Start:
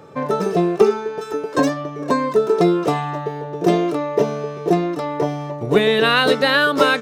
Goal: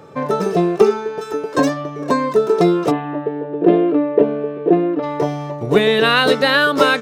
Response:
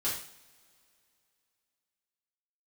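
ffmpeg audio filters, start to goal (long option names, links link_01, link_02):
-filter_complex "[0:a]asplit=3[link_01][link_02][link_03];[link_01]afade=type=out:start_time=2.9:duration=0.02[link_04];[link_02]highpass=190,equalizer=frequency=290:width_type=q:width=4:gain=9,equalizer=frequency=500:width_type=q:width=4:gain=5,equalizer=frequency=810:width_type=q:width=4:gain=-6,equalizer=frequency=1200:width_type=q:width=4:gain=-6,equalizer=frequency=2100:width_type=q:width=4:gain=-6,lowpass=frequency=2600:width=0.5412,lowpass=frequency=2600:width=1.3066,afade=type=in:start_time=2.9:duration=0.02,afade=type=out:start_time=5.02:duration=0.02[link_05];[link_03]afade=type=in:start_time=5.02:duration=0.02[link_06];[link_04][link_05][link_06]amix=inputs=3:normalize=0,volume=1.5dB"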